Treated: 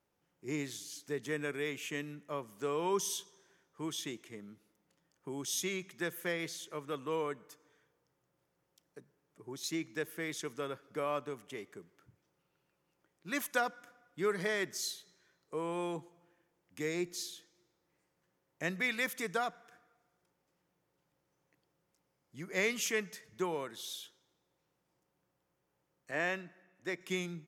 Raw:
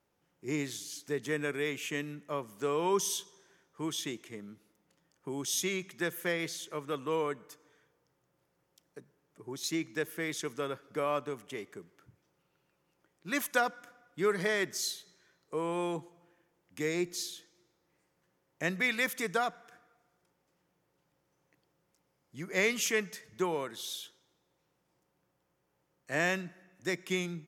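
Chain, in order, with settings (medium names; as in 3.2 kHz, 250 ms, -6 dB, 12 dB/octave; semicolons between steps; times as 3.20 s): 26.11–27.01 s: tone controls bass -7 dB, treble -9 dB; trim -3.5 dB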